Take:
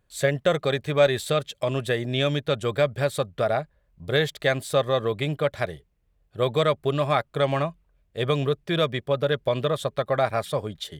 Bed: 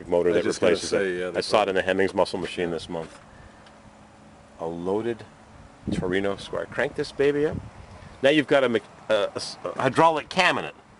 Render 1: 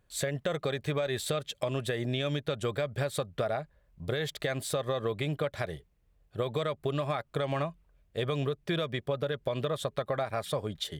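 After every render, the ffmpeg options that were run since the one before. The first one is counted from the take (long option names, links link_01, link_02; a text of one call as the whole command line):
ffmpeg -i in.wav -af "alimiter=limit=-16dB:level=0:latency=1:release=113,acompressor=threshold=-28dB:ratio=4" out.wav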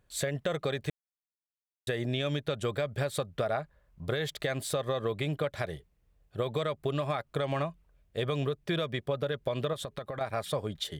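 ffmpeg -i in.wav -filter_complex "[0:a]asettb=1/sr,asplit=3[link_01][link_02][link_03];[link_01]atrim=end=3.514[link_04];[link_02]atrim=start=3.51:end=4.15,asetpts=PTS-STARTPTS,afade=type=in:duration=0.004:curve=qsin,afade=type=out:start_time=0.636:duration=0.004:curve=qsin,equalizer=frequency=1200:width=1.5:gain=4.5[link_05];[link_03]atrim=start=4.146[link_06];[link_04][link_05]acrossfade=duration=0.004:curve1=hsin:curve2=qsin[link_07];[link_07][link_06]acrossfade=duration=0.004:curve1=qsin:curve2=hsin,asettb=1/sr,asplit=3[link_08][link_09][link_10];[link_08]atrim=end=9.734[link_11];[link_09]atrim=start=9.73:end=10.21,asetpts=PTS-STARTPTS,afade=type=in:duration=0.004:curve=qsin,afade=type=out:start_time=0.476:duration=0.004:curve=qsin,acompressor=threshold=-33dB:ratio=6:attack=3.2:release=140:knee=1:detection=peak[link_12];[link_10]atrim=start=10.206[link_13];[link_11][link_12]acrossfade=duration=0.004:curve1=hsin:curve2=qsin[link_14];[link_14][link_13]acrossfade=duration=0.004:curve1=qsin:curve2=hsin,asplit=3[link_15][link_16][link_17];[link_15]atrim=end=0.9,asetpts=PTS-STARTPTS,afade=type=out:start_time=0.896:duration=0.004:curve=hsin[link_18];[link_16]atrim=start=0.9:end=1.87,asetpts=PTS-STARTPTS,volume=0[link_19];[link_17]atrim=start=1.87,asetpts=PTS-STARTPTS,afade=type=in:duration=0.004:curve=hsin[link_20];[link_18][link_19][link_20]concat=n=3:v=0:a=1" out.wav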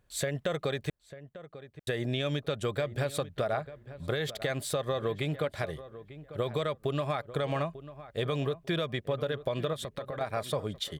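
ffmpeg -i in.wav -filter_complex "[0:a]asplit=2[link_01][link_02];[link_02]adelay=895,lowpass=frequency=1800:poles=1,volume=-14.5dB,asplit=2[link_03][link_04];[link_04]adelay=895,lowpass=frequency=1800:poles=1,volume=0.22[link_05];[link_01][link_03][link_05]amix=inputs=3:normalize=0" out.wav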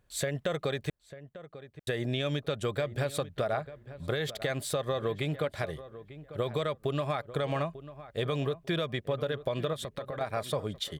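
ffmpeg -i in.wav -af anull out.wav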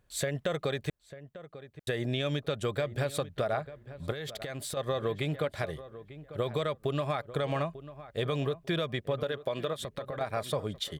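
ffmpeg -i in.wav -filter_complex "[0:a]asettb=1/sr,asplit=3[link_01][link_02][link_03];[link_01]atrim=end=4.114[link_04];[link_02]atrim=start=4.11:end=4.77,asetpts=PTS-STARTPTS,afade=type=in:duration=0.004:curve=qsin,afade=type=out:start_time=0.656:duration=0.004:curve=qsin,acompressor=threshold=-34dB:ratio=6:attack=3.2:release=140:knee=1:detection=peak[link_05];[link_03]atrim=start=4.766[link_06];[link_04][link_05]acrossfade=duration=0.004:curve1=hsin:curve2=qsin[link_07];[link_07][link_06]acrossfade=duration=0.004:curve1=qsin:curve2=hsin,asettb=1/sr,asplit=3[link_08][link_09][link_10];[link_08]atrim=end=9.234[link_11];[link_09]atrim=start=9.23:end=9.8,asetpts=PTS-STARTPTS,afade=type=in:duration=0.004:curve=qsin,afade=type=out:start_time=0.566:duration=0.004:curve=qsin,highpass=frequency=230:poles=1[link_12];[link_10]atrim=start=9.796[link_13];[link_11][link_12]acrossfade=duration=0.004:curve1=hsin:curve2=qsin[link_14];[link_14][link_13]acrossfade=duration=0.004:curve1=qsin:curve2=hsin" out.wav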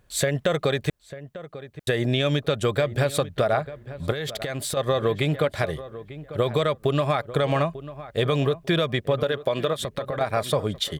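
ffmpeg -i in.wav -af "volume=8.5dB" out.wav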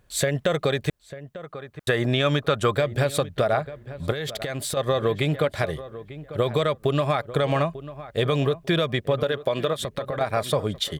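ffmpeg -i in.wav -filter_complex "[0:a]asettb=1/sr,asplit=3[link_01][link_02][link_03];[link_01]atrim=end=1.434[link_04];[link_02]atrim=start=1.43:end=2.76,asetpts=PTS-STARTPTS,afade=type=in:duration=0.004:curve=qsin,afade=type=out:start_time=1.326:duration=0.004:curve=qsin,equalizer=frequency=1200:width=1.4:gain=8[link_05];[link_03]atrim=start=2.756[link_06];[link_04][link_05]acrossfade=duration=0.004:curve1=hsin:curve2=qsin[link_07];[link_07][link_06]acrossfade=duration=0.004:curve1=qsin:curve2=hsin" out.wav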